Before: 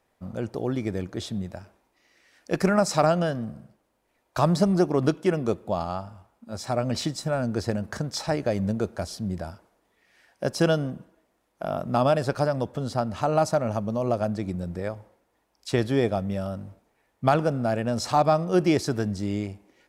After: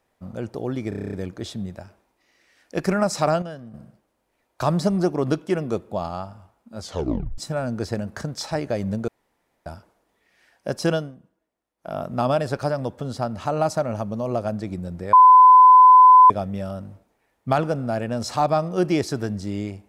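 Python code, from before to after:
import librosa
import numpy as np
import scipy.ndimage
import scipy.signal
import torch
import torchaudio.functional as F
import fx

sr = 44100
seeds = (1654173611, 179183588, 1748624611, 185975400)

y = fx.edit(x, sr, fx.stutter(start_s=0.89, slice_s=0.03, count=9),
    fx.clip_gain(start_s=3.18, length_s=0.32, db=-9.5),
    fx.tape_stop(start_s=6.56, length_s=0.58),
    fx.room_tone_fill(start_s=8.84, length_s=0.58),
    fx.fade_down_up(start_s=10.68, length_s=1.04, db=-13.0, fade_s=0.2),
    fx.bleep(start_s=14.89, length_s=1.17, hz=1010.0, db=-6.5), tone=tone)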